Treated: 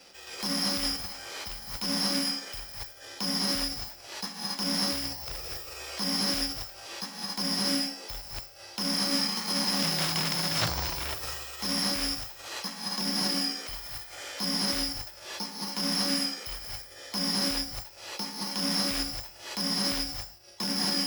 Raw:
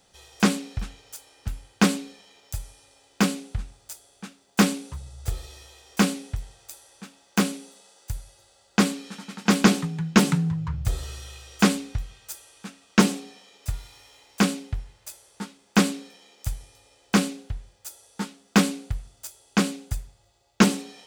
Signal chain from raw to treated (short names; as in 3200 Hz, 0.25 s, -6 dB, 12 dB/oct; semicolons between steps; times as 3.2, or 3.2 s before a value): careless resampling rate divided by 6×, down filtered, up zero stuff; limiter -13 dBFS, peak gain reduction 25 dB; non-linear reverb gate 0.3 s rising, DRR -2 dB; dynamic EQ 4700 Hz, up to -5 dB, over -45 dBFS, Q 1; formant shift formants -6 st; sine folder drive 11 dB, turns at -7 dBFS; three-band isolator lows -14 dB, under 230 Hz, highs -22 dB, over 6100 Hz; notch 420 Hz, Q 12; gain -4 dB